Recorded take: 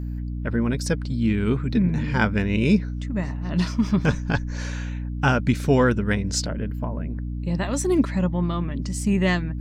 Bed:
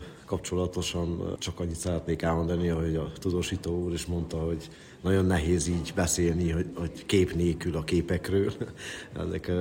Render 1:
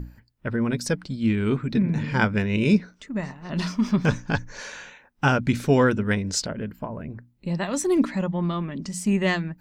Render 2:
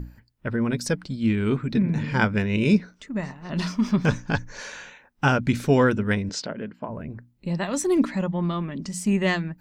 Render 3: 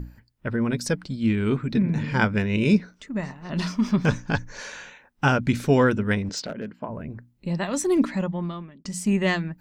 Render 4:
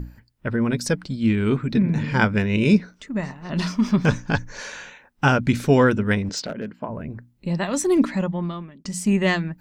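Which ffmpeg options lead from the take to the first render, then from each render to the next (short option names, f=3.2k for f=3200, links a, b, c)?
-af "bandreject=f=60:t=h:w=6,bandreject=f=120:t=h:w=6,bandreject=f=180:t=h:w=6,bandreject=f=240:t=h:w=6,bandreject=f=300:t=h:w=6"
-filter_complex "[0:a]asettb=1/sr,asplit=3[a][b][c];[a]atrim=end=6.294[d];[b]atrim=start=6.29:end=6.88,asetpts=PTS-STARTPTS,afade=t=in:d=0.004:c=qsin,afade=t=out:st=0.586:d=0.004:c=qsin,highpass=190,lowpass=4.5k[e];[c]atrim=start=6.876[f];[d][e]acrossfade=d=0.004:c1=hsin:c2=qsin[g];[g][f]acrossfade=d=0.004:c1=qsin:c2=hsin"
-filter_complex "[0:a]asettb=1/sr,asplit=3[a][b][c];[a]atrim=end=6.224[d];[b]atrim=start=6.22:end=6.82,asetpts=PTS-STARTPTS,afade=t=in:d=0.004:c=qsin,afade=t=out:st=0.596:d=0.004:c=qsin,volume=23.5dB,asoftclip=hard,volume=-23.5dB[e];[c]atrim=start=6.816[f];[d][e]acrossfade=d=0.004:c1=hsin:c2=qsin[g];[g][f]acrossfade=d=0.004:c1=qsin:c2=hsin,asplit=2[h][i];[h]atrim=end=8.85,asetpts=PTS-STARTPTS,afade=t=out:st=8.2:d=0.65[j];[i]atrim=start=8.85,asetpts=PTS-STARTPTS,afade=t=in:d=0.004:c=hsin[k];[j][k]concat=n=2:v=0:a=1"
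-af "volume=2.5dB"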